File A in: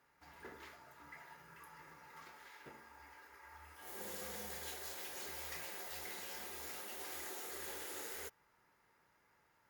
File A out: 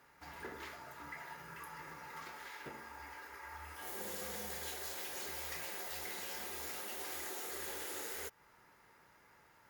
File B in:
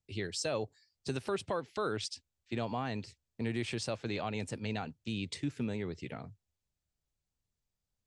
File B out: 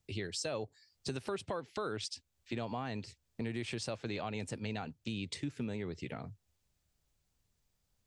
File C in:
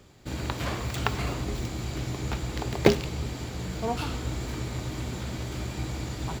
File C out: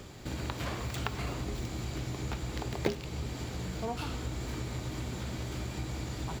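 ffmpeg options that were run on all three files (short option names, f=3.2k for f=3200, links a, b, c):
-af "acompressor=threshold=-53dB:ratio=2,volume=8.5dB"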